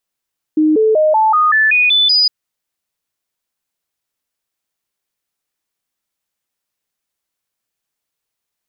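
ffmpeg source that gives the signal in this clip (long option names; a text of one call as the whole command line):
ffmpeg -f lavfi -i "aevalsrc='0.376*clip(min(mod(t,0.19),0.19-mod(t,0.19))/0.005,0,1)*sin(2*PI*309*pow(2,floor(t/0.19)/2)*mod(t,0.19))':duration=1.71:sample_rate=44100" out.wav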